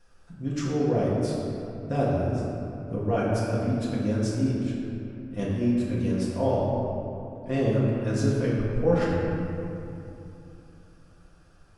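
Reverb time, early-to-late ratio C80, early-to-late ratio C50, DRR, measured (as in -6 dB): 2.9 s, 0.0 dB, -1.5 dB, -7.0 dB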